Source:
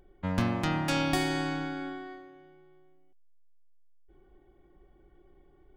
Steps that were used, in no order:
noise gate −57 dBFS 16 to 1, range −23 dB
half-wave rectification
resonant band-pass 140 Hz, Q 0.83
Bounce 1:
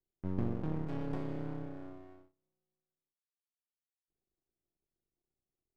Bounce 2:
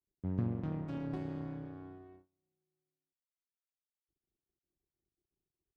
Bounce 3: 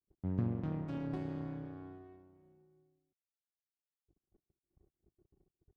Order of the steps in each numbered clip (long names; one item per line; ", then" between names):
resonant band-pass, then half-wave rectification, then noise gate
half-wave rectification, then resonant band-pass, then noise gate
half-wave rectification, then noise gate, then resonant band-pass